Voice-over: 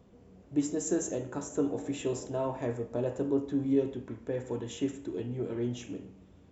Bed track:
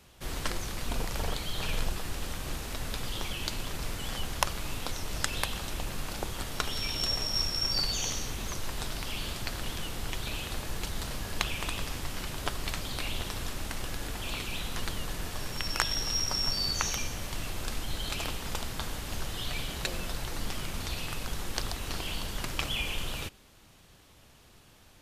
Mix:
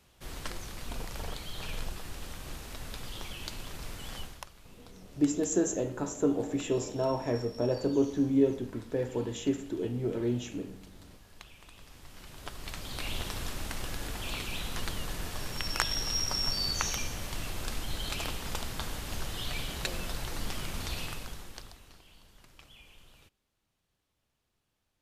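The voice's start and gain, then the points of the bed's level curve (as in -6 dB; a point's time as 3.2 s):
4.65 s, +2.5 dB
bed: 4.21 s -6 dB
4.49 s -20 dB
11.68 s -20 dB
13.13 s -1 dB
21.03 s -1 dB
22.04 s -23 dB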